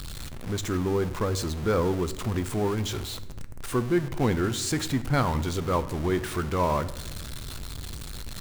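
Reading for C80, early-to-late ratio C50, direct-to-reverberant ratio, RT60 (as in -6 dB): 16.5 dB, 15.0 dB, 11.0 dB, 1.1 s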